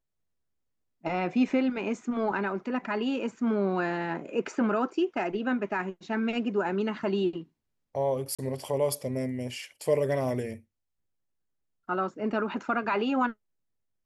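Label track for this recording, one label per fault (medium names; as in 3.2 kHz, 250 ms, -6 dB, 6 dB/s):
8.350000	8.390000	dropout 36 ms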